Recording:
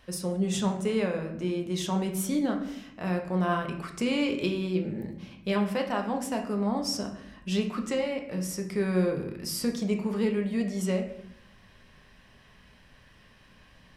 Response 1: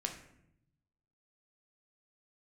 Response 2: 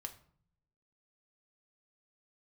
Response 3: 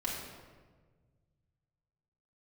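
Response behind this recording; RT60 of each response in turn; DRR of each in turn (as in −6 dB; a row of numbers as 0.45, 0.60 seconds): 1; 0.75, 0.55, 1.5 seconds; 2.5, 5.0, −5.0 decibels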